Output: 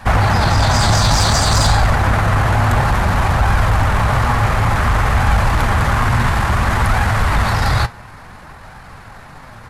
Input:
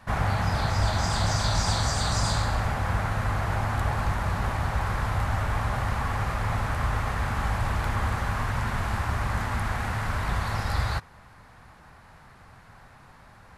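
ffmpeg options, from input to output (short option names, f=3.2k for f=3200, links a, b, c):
-af "atempo=1.4,aeval=exprs='0.266*sin(PI/2*2.24*val(0)/0.266)':c=same,flanger=delay=1.2:depth=7.3:regen=71:speed=0.57:shape=sinusoidal,volume=8dB"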